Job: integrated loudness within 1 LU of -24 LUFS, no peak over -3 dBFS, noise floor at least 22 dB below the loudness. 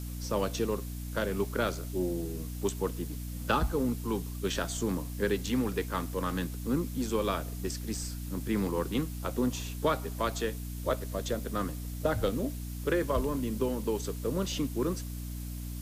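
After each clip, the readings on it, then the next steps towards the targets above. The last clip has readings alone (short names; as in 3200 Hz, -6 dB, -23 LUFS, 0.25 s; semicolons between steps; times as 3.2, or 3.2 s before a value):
hum 60 Hz; harmonics up to 300 Hz; hum level -36 dBFS; noise floor -39 dBFS; noise floor target -55 dBFS; loudness -32.5 LUFS; peak -14.0 dBFS; loudness target -24.0 LUFS
-> notches 60/120/180/240/300 Hz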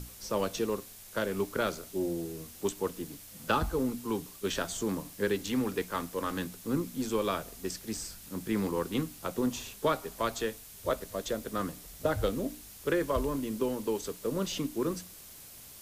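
hum none; noise floor -50 dBFS; noise floor target -56 dBFS
-> denoiser 6 dB, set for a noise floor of -50 dBFS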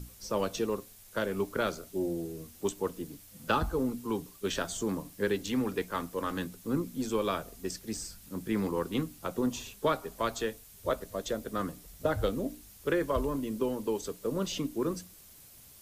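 noise floor -54 dBFS; noise floor target -56 dBFS
-> denoiser 6 dB, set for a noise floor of -54 dBFS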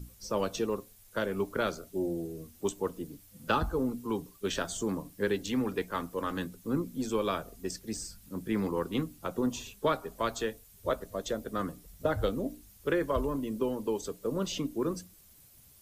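noise floor -58 dBFS; loudness -33.5 LUFS; peak -14.5 dBFS; loudness target -24.0 LUFS
-> gain +9.5 dB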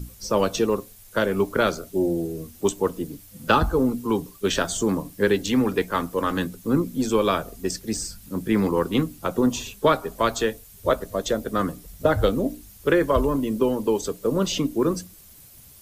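loudness -24.0 LUFS; peak -5.0 dBFS; noise floor -48 dBFS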